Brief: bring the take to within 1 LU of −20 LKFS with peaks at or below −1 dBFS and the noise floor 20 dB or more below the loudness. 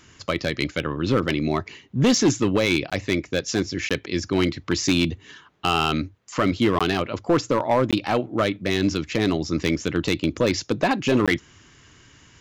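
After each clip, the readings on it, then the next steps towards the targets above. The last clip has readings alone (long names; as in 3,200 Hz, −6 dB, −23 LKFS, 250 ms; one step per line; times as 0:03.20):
share of clipped samples 0.9%; peaks flattened at −12.5 dBFS; number of dropouts 5; longest dropout 16 ms; integrated loudness −23.0 LKFS; sample peak −12.5 dBFS; target loudness −20.0 LKFS
→ clipped peaks rebuilt −12.5 dBFS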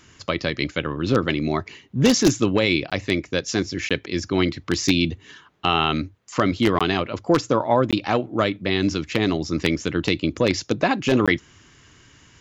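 share of clipped samples 0.0%; number of dropouts 5; longest dropout 16 ms
→ repair the gap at 0:02.90/0:03.89/0:06.79/0:07.91/0:11.26, 16 ms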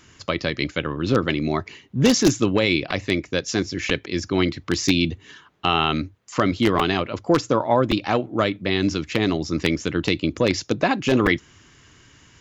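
number of dropouts 0; integrated loudness −22.0 LKFS; sample peak −3.5 dBFS; target loudness −20.0 LKFS
→ level +2 dB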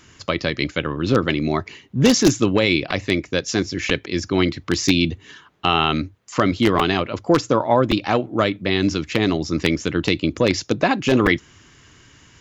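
integrated loudness −20.0 LKFS; sample peak −1.5 dBFS; background noise floor −51 dBFS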